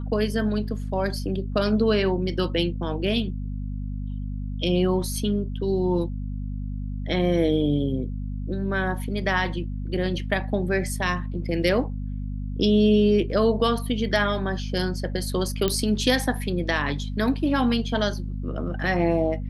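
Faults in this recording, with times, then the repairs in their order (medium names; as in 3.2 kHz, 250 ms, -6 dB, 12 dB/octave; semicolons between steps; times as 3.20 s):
hum 50 Hz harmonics 5 -30 dBFS
15.68 s: pop -9 dBFS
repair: de-click; de-hum 50 Hz, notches 5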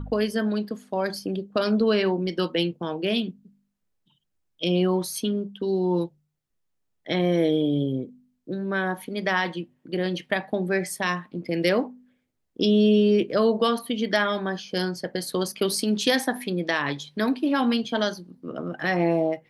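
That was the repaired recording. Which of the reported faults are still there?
nothing left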